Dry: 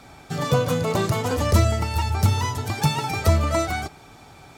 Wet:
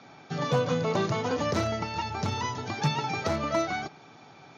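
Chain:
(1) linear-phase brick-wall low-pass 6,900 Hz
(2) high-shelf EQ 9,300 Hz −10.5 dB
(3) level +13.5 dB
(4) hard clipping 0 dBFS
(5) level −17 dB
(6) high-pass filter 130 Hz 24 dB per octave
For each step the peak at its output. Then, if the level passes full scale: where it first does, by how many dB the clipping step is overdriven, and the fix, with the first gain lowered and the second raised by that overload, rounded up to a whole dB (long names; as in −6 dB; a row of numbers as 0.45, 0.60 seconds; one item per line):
−5.5, −5.5, +8.0, 0.0, −17.0, −13.0 dBFS
step 3, 8.0 dB
step 3 +5.5 dB, step 5 −9 dB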